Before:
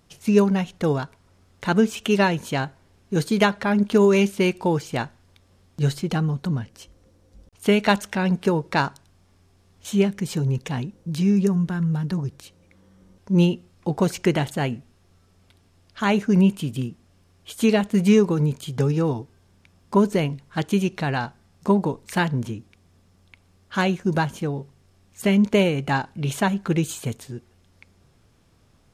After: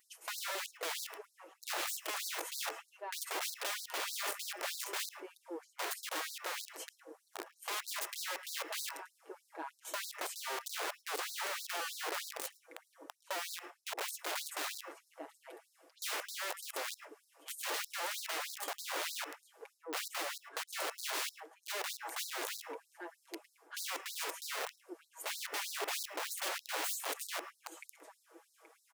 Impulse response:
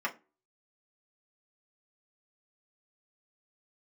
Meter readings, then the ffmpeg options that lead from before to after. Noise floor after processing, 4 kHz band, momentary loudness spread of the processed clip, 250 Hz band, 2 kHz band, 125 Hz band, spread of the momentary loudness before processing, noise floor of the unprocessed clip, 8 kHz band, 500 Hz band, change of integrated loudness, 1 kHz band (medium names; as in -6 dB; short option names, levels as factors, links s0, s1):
-74 dBFS, -6.0 dB, 15 LU, -35.0 dB, -11.0 dB, under -40 dB, 12 LU, -59 dBFS, -1.5 dB, -22.5 dB, -17.0 dB, -13.5 dB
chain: -filter_complex "[0:a]equalizer=f=4000:t=o:w=1.8:g=-14.5,aecho=1:1:6.2:0.8,areverse,acompressor=threshold=0.0398:ratio=16,areverse,asoftclip=type=tanh:threshold=0.0473,asplit=2[s0][s1];[s1]adelay=826,lowpass=f=2700:p=1,volume=0.266,asplit=2[s2][s3];[s3]adelay=826,lowpass=f=2700:p=1,volume=0.24,asplit=2[s4][s5];[s5]adelay=826,lowpass=f=2700:p=1,volume=0.24[s6];[s0][s2][s4][s6]amix=inputs=4:normalize=0,aeval=exprs='(mod(63.1*val(0)+1,2)-1)/63.1':c=same,asplit=2[s7][s8];[1:a]atrim=start_sample=2205,adelay=107[s9];[s8][s9]afir=irnorm=-1:irlink=0,volume=0.119[s10];[s7][s10]amix=inputs=2:normalize=0,afftfilt=real='re*gte(b*sr/1024,280*pow(3900/280,0.5+0.5*sin(2*PI*3.2*pts/sr)))':imag='im*gte(b*sr/1024,280*pow(3900/280,0.5+0.5*sin(2*PI*3.2*pts/sr)))':win_size=1024:overlap=0.75,volume=1.68"